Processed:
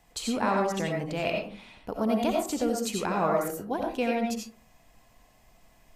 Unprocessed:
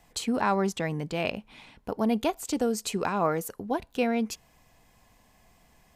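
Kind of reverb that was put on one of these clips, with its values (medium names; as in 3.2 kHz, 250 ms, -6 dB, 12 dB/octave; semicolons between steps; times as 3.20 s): algorithmic reverb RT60 0.41 s, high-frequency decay 0.4×, pre-delay 45 ms, DRR 0 dB; trim -2.5 dB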